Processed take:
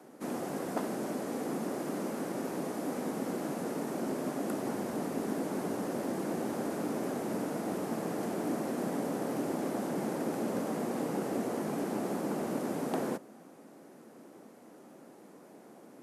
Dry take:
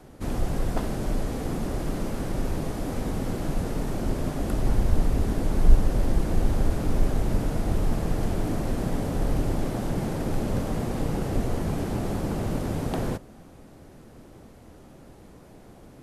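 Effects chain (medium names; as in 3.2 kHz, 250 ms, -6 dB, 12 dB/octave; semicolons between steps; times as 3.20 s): high-pass 210 Hz 24 dB/octave; peaking EQ 3.5 kHz -6 dB 1.2 oct; trim -2 dB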